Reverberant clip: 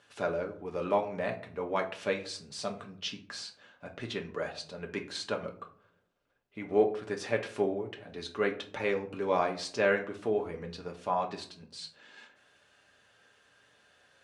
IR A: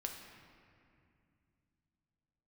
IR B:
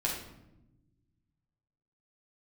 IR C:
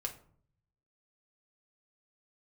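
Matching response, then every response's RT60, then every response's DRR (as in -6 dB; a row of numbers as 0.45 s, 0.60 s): C; 2.5 s, 0.90 s, 0.55 s; 2.0 dB, -4.0 dB, 2.0 dB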